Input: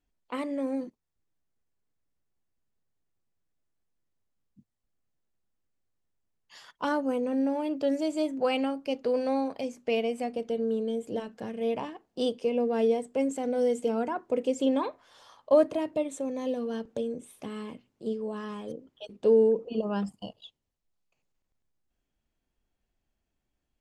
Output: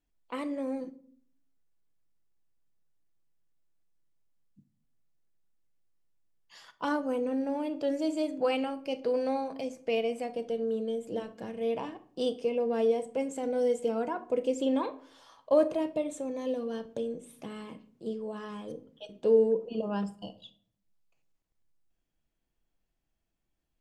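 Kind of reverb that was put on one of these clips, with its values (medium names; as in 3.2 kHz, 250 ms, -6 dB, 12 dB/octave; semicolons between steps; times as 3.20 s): simulated room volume 680 m³, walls furnished, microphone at 0.68 m; trim -2.5 dB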